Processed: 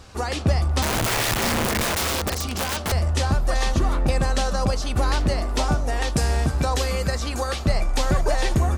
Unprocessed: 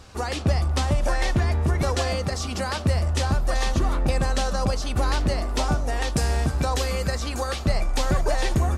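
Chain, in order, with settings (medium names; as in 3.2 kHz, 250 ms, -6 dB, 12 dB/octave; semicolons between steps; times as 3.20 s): 0.82–2.92 s: integer overflow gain 20 dB; trim +1.5 dB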